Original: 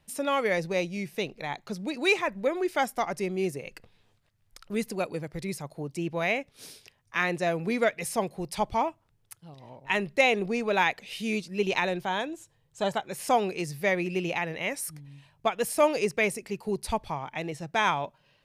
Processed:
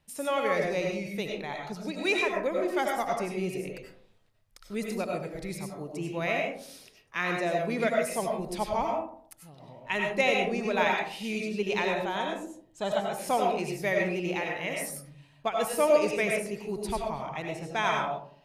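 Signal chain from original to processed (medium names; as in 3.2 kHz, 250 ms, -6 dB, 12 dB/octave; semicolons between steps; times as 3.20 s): algorithmic reverb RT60 0.57 s, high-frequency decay 0.35×, pre-delay 55 ms, DRR 0 dB; trim -4 dB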